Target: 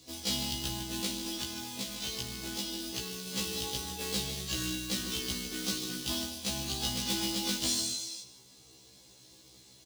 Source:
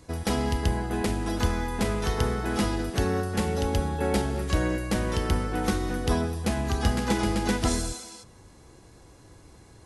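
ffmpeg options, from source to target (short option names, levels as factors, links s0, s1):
-filter_complex "[0:a]highpass=110,lowpass=7400,bandreject=f=910:w=19,aecho=1:1:151:0.224,acrusher=bits=3:mode=log:mix=0:aa=0.000001,asettb=1/sr,asplit=3[s0][s1][s2];[s0]atrim=end=1.264[s3];[s1]atrim=start=1.26:end=3.27,asetpts=PTS-STARTPTS,afade=t=in:d=0.004:c=qsin,afade=t=out:st=2.006:d=0.004:c=qsin,acompressor=threshold=0.0398:ratio=6[s4];[s2]atrim=start=3.266[s5];[s3][s4]acrossfade=d=0.004:c1=hsin:c2=qsin[s6];[s6][s5]acrossfade=d=0.004:c1=qsin:c2=hsin,highshelf=f=2400:t=q:w=1.5:g=13.5,asoftclip=type=tanh:threshold=0.2,afftfilt=real='re*1.73*eq(mod(b,3),0)':imag='im*1.73*eq(mod(b,3),0)':win_size=2048:overlap=0.75,volume=0.447"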